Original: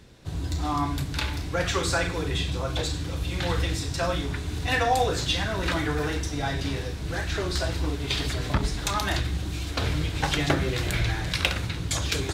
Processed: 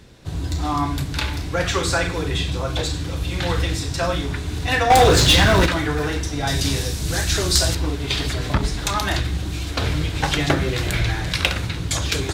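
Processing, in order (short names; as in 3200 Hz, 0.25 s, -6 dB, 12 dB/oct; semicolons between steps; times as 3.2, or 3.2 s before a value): 4.9–5.66 sample leveller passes 3; 6.47–7.75 tone controls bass +3 dB, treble +15 dB; gain +4.5 dB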